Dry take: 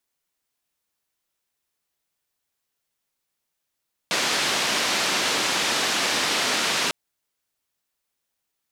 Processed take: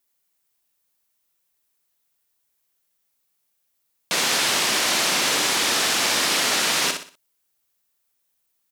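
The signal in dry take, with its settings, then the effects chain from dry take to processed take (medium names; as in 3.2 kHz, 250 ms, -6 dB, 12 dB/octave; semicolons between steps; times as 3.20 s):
noise band 200–4900 Hz, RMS -23.5 dBFS 2.80 s
treble shelf 9.3 kHz +10 dB; on a send: feedback delay 61 ms, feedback 35%, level -6.5 dB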